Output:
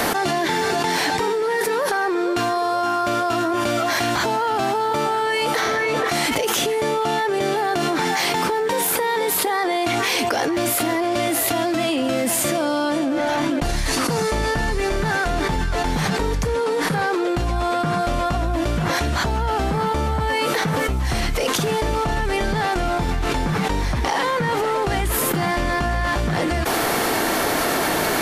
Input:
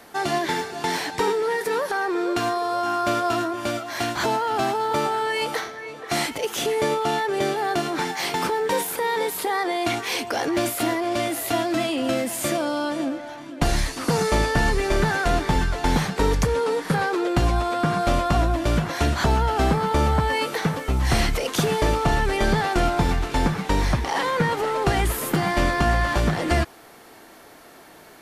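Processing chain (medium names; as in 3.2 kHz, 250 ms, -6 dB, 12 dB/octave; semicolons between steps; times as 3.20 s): level flattener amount 100%; trim -4.5 dB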